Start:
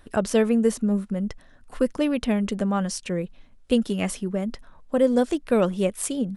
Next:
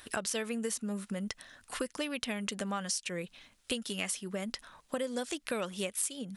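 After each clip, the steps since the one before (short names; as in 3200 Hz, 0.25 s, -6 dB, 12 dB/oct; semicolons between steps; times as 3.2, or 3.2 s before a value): HPF 78 Hz 6 dB/oct; tilt shelf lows -9 dB, about 1200 Hz; compressor 5:1, threshold -36 dBFS, peak gain reduction 17.5 dB; gain +3 dB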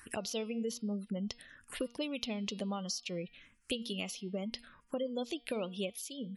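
spectral gate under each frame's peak -25 dB strong; de-hum 237.2 Hz, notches 22; envelope phaser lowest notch 570 Hz, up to 1700 Hz, full sweep at -33.5 dBFS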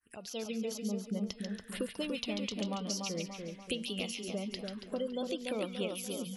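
opening faded in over 0.51 s; wow and flutter 33 cents; on a send: split-band echo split 1600 Hz, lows 0.29 s, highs 0.14 s, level -4.5 dB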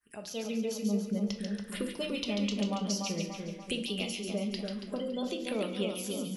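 reverb RT60 0.55 s, pre-delay 5 ms, DRR 4.5 dB; gain +1 dB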